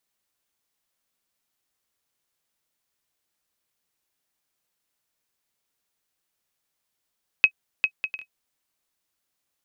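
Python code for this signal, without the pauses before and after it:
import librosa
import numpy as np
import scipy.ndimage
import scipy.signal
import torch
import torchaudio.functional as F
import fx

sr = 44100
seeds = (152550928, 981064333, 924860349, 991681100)

y = fx.bouncing_ball(sr, first_gap_s=0.4, ratio=0.5, hz=2550.0, decay_ms=73.0, level_db=-4.5)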